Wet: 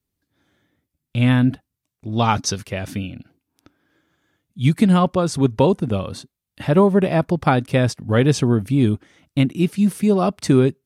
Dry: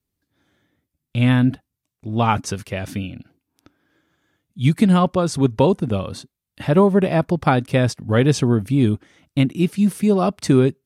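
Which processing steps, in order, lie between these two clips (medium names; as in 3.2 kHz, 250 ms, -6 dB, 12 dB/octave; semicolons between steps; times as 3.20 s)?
2.12–2.58 s: high-order bell 4.7 kHz +9 dB 1 oct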